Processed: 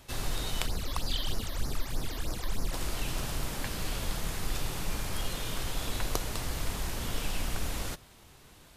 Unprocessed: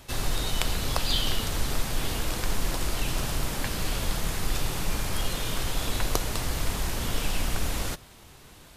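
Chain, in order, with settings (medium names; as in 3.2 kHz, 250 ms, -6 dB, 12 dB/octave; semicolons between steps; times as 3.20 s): 0.66–2.73 s: phase shifter stages 12, 3.2 Hz, lowest notch 130–3300 Hz; trim -5 dB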